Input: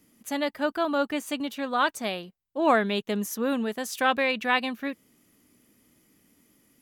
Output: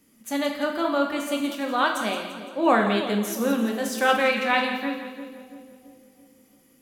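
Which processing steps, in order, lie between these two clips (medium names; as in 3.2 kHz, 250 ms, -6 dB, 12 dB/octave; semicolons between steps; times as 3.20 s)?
hum notches 60/120/180 Hz; on a send: two-band feedback delay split 600 Hz, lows 335 ms, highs 171 ms, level -10.5 dB; on the sum: gated-style reverb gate 250 ms falling, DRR 2 dB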